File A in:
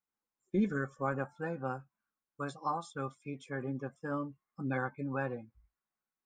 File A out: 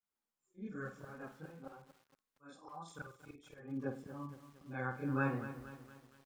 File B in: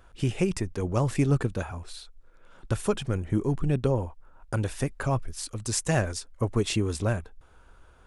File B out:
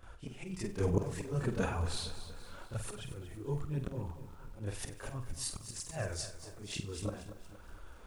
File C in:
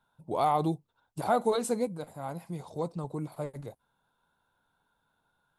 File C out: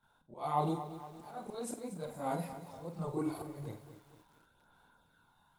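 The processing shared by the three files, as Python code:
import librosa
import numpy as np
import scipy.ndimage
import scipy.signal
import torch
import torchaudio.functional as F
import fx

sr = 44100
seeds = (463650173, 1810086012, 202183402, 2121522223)

y = fx.rider(x, sr, range_db=4, speed_s=2.0)
y = fx.auto_swell(y, sr, attack_ms=626.0)
y = fx.chorus_voices(y, sr, voices=2, hz=0.52, base_ms=29, depth_ms=3.0, mix_pct=70)
y = fx.room_flutter(y, sr, wall_m=8.2, rt60_s=0.32)
y = fx.echo_crushed(y, sr, ms=233, feedback_pct=55, bits=10, wet_db=-12.0)
y = y * librosa.db_to_amplitude(4.0)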